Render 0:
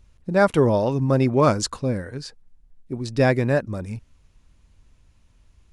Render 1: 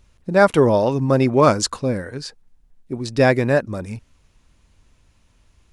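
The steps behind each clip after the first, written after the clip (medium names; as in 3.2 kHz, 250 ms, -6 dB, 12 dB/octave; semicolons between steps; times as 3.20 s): bass shelf 170 Hz -6.5 dB; trim +4.5 dB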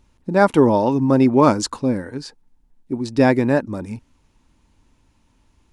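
small resonant body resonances 270/880 Hz, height 9 dB, ringing for 20 ms; trim -3.5 dB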